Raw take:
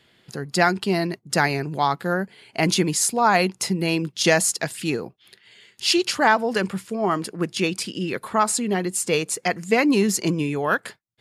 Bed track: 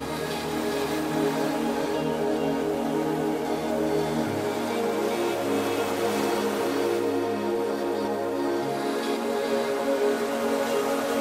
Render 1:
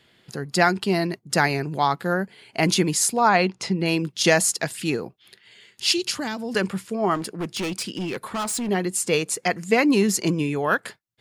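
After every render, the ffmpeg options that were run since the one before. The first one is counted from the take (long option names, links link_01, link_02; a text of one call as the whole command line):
ffmpeg -i in.wav -filter_complex "[0:a]asettb=1/sr,asplit=3[link_01][link_02][link_03];[link_01]atrim=end=3.294[link_04];[link_02]atrim=start=3.29:end=3.86,asetpts=PTS-STARTPTS,afade=type=in:duration=0.004:curve=qsin,afade=type=out:start_time=0.566:duration=0.004:curve=qsin,lowpass=4800[link_05];[link_03]atrim=start=3.856[link_06];[link_04][link_05]acrossfade=duration=0.004:curve1=hsin:curve2=qsin[link_07];[link_07][link_06]acrossfade=duration=0.004:curve1=qsin:curve2=hsin,asettb=1/sr,asplit=3[link_08][link_09][link_10];[link_08]atrim=end=5.924[link_11];[link_09]atrim=start=5.92:end=6.55,asetpts=PTS-STARTPTS,afade=type=in:duration=0.004:curve=qsin,afade=type=out:start_time=0.626:duration=0.004:curve=qsin,acrossover=split=310|3000[link_12][link_13][link_14];[link_13]acompressor=threshold=-37dB:ratio=3:attack=3.2:release=140:knee=2.83:detection=peak[link_15];[link_12][link_15][link_14]amix=inputs=3:normalize=0[link_16];[link_10]atrim=start=6.546[link_17];[link_11][link_16]acrossfade=duration=0.004:curve1=hsin:curve2=qsin[link_18];[link_18][link_17]acrossfade=duration=0.004:curve1=qsin:curve2=hsin,asettb=1/sr,asplit=3[link_19][link_20][link_21];[link_19]atrim=end=7.154[link_22];[link_20]atrim=start=7.15:end=8.69,asetpts=PTS-STARTPTS,afade=type=in:duration=0.004:curve=qsin,afade=type=out:start_time=1.536:duration=0.004:curve=qsin,asoftclip=type=hard:threshold=-24dB[link_23];[link_21]atrim=start=8.686[link_24];[link_22][link_23]acrossfade=duration=0.004:curve1=hsin:curve2=qsin[link_25];[link_25][link_24]acrossfade=duration=0.004:curve1=qsin:curve2=hsin" out.wav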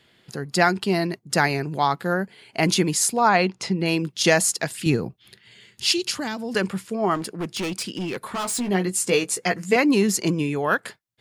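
ffmpeg -i in.wav -filter_complex "[0:a]asettb=1/sr,asplit=3[link_01][link_02][link_03];[link_01]atrim=end=4.864[link_04];[link_02]atrim=start=4.86:end=5.88,asetpts=PTS-STARTPTS,afade=type=in:duration=0.004:curve=qsin,afade=type=out:start_time=1.016:duration=0.004:curve=qsin,bass=frequency=250:gain=11,treble=frequency=4000:gain=1[link_05];[link_03]atrim=start=5.876[link_06];[link_04][link_05]acrossfade=duration=0.004:curve1=hsin:curve2=qsin[link_07];[link_07][link_06]acrossfade=duration=0.004:curve1=qsin:curve2=hsin,asettb=1/sr,asplit=3[link_08][link_09][link_10];[link_08]atrim=end=8.274[link_11];[link_09]atrim=start=8.27:end=9.76,asetpts=PTS-STARTPTS,afade=type=in:duration=0.004:curve=qsin,afade=type=out:start_time=1.486:duration=0.004:curve=qsin,asplit=2[link_12][link_13];[link_13]adelay=16,volume=-6dB[link_14];[link_12][link_14]amix=inputs=2:normalize=0,atrim=end_sample=65709[link_15];[link_10]atrim=start=9.756[link_16];[link_11][link_15]acrossfade=duration=0.004:curve1=hsin:curve2=qsin[link_17];[link_17][link_16]acrossfade=duration=0.004:curve1=qsin:curve2=hsin" out.wav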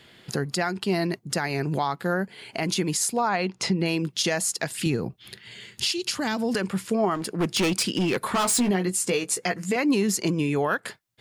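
ffmpeg -i in.wav -filter_complex "[0:a]asplit=2[link_01][link_02];[link_02]acompressor=threshold=-30dB:ratio=6,volume=1dB[link_03];[link_01][link_03]amix=inputs=2:normalize=0,alimiter=limit=-14.5dB:level=0:latency=1:release=318" out.wav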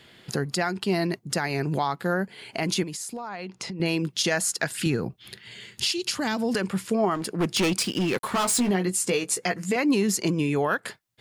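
ffmpeg -i in.wav -filter_complex "[0:a]asettb=1/sr,asplit=3[link_01][link_02][link_03];[link_01]atrim=end=2.834[link_04];[link_02]atrim=start=2.83:end=3.8,asetpts=PTS-STARTPTS,afade=type=in:duration=0.004:curve=qsin,afade=type=out:start_time=0.966:duration=0.004:curve=qsin,acompressor=threshold=-31dB:ratio=8:attack=3.2:release=140:knee=1:detection=peak[link_05];[link_03]atrim=start=3.796[link_06];[link_04][link_05]acrossfade=duration=0.004:curve1=hsin:curve2=qsin[link_07];[link_07][link_06]acrossfade=duration=0.004:curve1=qsin:curve2=hsin,asettb=1/sr,asplit=3[link_08][link_09][link_10];[link_08]atrim=end=4.314[link_11];[link_09]atrim=start=4.31:end=5.05,asetpts=PTS-STARTPTS,afade=type=in:duration=0.004:curve=qsin,afade=type=out:start_time=0.736:duration=0.004:curve=qsin,equalizer=frequency=1500:width=3.1:gain=6.5[link_12];[link_10]atrim=start=5.046[link_13];[link_11][link_12]acrossfade=duration=0.004:curve1=hsin:curve2=qsin[link_14];[link_14][link_13]acrossfade=duration=0.004:curve1=qsin:curve2=hsin,asettb=1/sr,asplit=3[link_15][link_16][link_17];[link_15]atrim=end=7.794[link_18];[link_16]atrim=start=7.79:end=8.72,asetpts=PTS-STARTPTS,afade=type=in:duration=0.004:curve=qsin,afade=type=out:start_time=0.926:duration=0.004:curve=qsin,aeval=exprs='sgn(val(0))*max(abs(val(0))-0.00891,0)':channel_layout=same[link_19];[link_17]atrim=start=8.716[link_20];[link_18][link_19]acrossfade=duration=0.004:curve1=hsin:curve2=qsin[link_21];[link_21][link_20]acrossfade=duration=0.004:curve1=qsin:curve2=hsin" out.wav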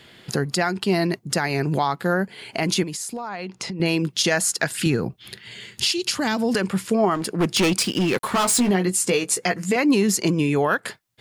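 ffmpeg -i in.wav -af "volume=4dB" out.wav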